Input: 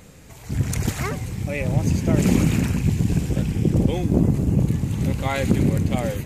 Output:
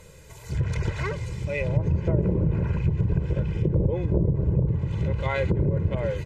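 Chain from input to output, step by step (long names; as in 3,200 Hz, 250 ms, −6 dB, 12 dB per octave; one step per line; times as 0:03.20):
mains-hum notches 50/100 Hz
treble cut that deepens with the level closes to 600 Hz, closed at −13.5 dBFS
comb filter 2 ms, depth 87%
level −4.5 dB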